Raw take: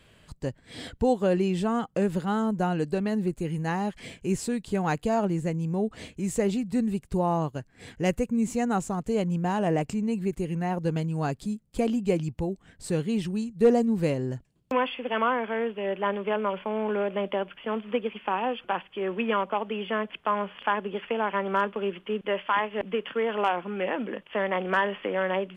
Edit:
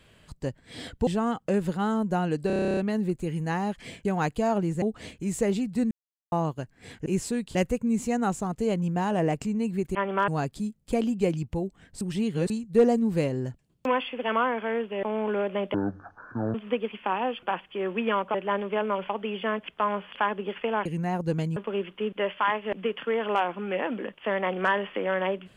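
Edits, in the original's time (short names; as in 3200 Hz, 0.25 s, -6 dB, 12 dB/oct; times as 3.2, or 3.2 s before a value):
1.07–1.55 cut
2.95 stutter 0.03 s, 11 plays
4.23–4.72 move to 8.03
5.49–5.79 cut
6.88–7.29 mute
10.43–11.14 swap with 21.32–21.65
12.87–13.36 reverse
15.89–16.64 move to 19.56
17.35–17.76 speed 51%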